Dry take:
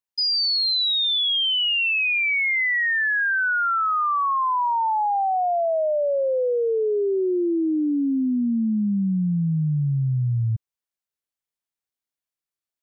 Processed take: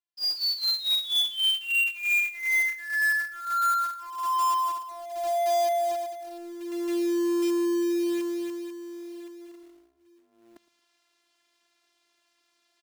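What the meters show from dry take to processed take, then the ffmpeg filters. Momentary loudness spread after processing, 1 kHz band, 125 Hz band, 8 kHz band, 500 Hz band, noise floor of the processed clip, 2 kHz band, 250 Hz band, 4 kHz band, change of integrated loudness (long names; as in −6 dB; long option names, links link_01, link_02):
15 LU, −5.0 dB, below −40 dB, can't be measured, −6.0 dB, −72 dBFS, −5.0 dB, −6.5 dB, −5.0 dB, −4.5 dB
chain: -af "highshelf=frequency=2600:gain=5,areverse,acompressor=mode=upward:threshold=-33dB:ratio=2.5,areverse,afftfilt=real='hypot(re,im)*cos(PI*b)':imag='0':win_size=512:overlap=0.75,highpass=210,lowpass=4100,aecho=1:1:113|226:0.0891|0.0285,acrusher=bits=3:mode=log:mix=0:aa=0.000001,volume=-2dB"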